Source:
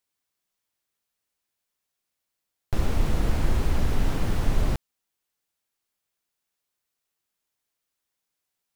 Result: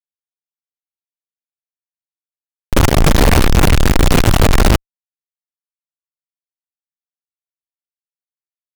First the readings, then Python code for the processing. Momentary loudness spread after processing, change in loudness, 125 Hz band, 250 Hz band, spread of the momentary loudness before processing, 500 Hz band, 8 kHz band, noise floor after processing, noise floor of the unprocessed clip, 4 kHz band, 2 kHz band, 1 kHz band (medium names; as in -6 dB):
4 LU, +15.0 dB, +14.0 dB, +16.0 dB, 4 LU, +17.5 dB, +21.0 dB, under -85 dBFS, -83 dBFS, +20.0 dB, +19.5 dB, +18.0 dB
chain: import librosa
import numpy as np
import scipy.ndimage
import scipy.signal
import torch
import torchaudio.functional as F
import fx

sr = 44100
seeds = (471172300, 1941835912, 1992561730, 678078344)

y = fx.fuzz(x, sr, gain_db=46.0, gate_db=-50.0)
y = y * 10.0 ** (6.0 / 20.0)